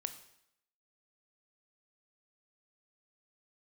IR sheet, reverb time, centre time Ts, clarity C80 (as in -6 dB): 0.75 s, 9 ms, 14.5 dB